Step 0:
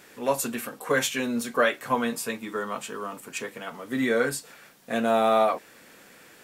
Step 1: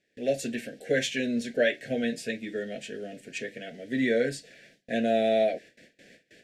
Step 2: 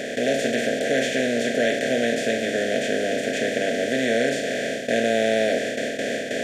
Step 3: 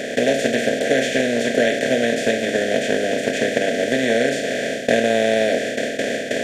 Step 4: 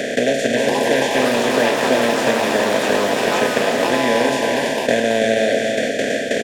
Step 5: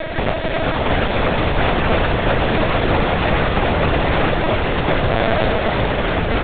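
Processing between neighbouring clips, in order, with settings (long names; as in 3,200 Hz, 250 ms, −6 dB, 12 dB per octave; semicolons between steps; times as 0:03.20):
low-pass filter 5,100 Hz 12 dB per octave; noise gate with hold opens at −41 dBFS; elliptic band-stop filter 660–1,700 Hz, stop band 60 dB
compressor on every frequency bin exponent 0.2; level −3 dB
transient designer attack +6 dB, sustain 0 dB; level +2.5 dB
delay with pitch and tempo change per echo 569 ms, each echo +7 semitones, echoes 3, each echo −6 dB; single-tap delay 328 ms −6 dB; multiband upward and downward compressor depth 40%
lower of the sound and its delayed copy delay 3.1 ms; delay with pitch and tempo change per echo 618 ms, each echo −6 semitones, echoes 2; linear-prediction vocoder at 8 kHz pitch kept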